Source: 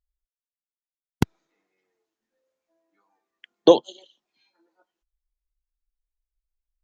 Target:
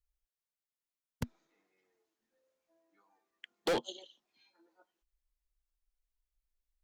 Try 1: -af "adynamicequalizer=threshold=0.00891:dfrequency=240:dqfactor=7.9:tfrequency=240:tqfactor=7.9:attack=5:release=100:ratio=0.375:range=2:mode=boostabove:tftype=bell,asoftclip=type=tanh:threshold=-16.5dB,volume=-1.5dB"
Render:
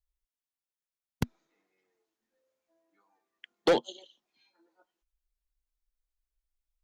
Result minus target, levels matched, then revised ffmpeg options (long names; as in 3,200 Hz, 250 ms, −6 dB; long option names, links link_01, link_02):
soft clipping: distortion −4 dB
-af "adynamicequalizer=threshold=0.00891:dfrequency=240:dqfactor=7.9:tfrequency=240:tqfactor=7.9:attack=5:release=100:ratio=0.375:range=2:mode=boostabove:tftype=bell,asoftclip=type=tanh:threshold=-26dB,volume=-1.5dB"